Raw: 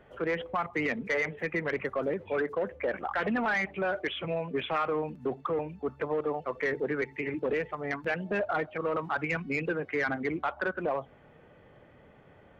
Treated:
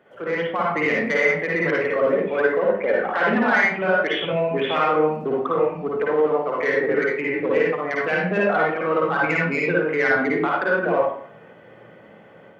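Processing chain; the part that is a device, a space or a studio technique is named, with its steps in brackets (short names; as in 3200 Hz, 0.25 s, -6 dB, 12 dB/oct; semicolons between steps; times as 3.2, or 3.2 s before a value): far laptop microphone (reverb RT60 0.60 s, pre-delay 49 ms, DRR -4 dB; HPF 180 Hz 12 dB/oct; AGC gain up to 5 dB)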